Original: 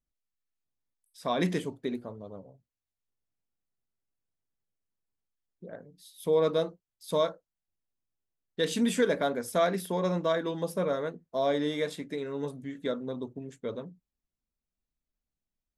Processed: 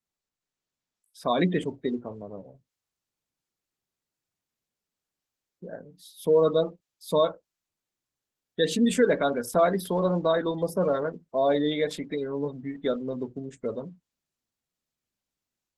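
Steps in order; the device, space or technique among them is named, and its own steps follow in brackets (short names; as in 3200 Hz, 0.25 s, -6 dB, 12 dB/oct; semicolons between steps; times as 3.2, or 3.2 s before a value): noise-suppressed video call (HPF 100 Hz 12 dB/oct; spectral gate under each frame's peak -25 dB strong; AGC gain up to 6 dB; gain -1.5 dB; Opus 16 kbps 48000 Hz)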